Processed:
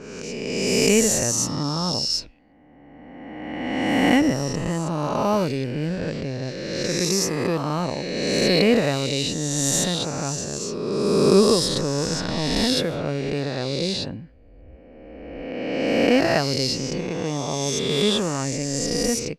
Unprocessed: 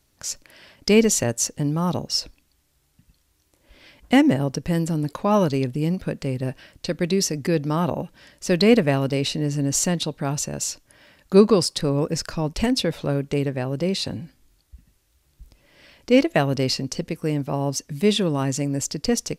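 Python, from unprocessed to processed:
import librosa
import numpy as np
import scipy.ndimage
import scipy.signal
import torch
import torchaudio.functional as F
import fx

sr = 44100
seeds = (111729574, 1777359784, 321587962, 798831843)

y = fx.spec_swells(x, sr, rise_s=2.4)
y = fx.env_lowpass(y, sr, base_hz=1300.0, full_db=-13.0)
y = F.gain(torch.from_numpy(y), -4.5).numpy()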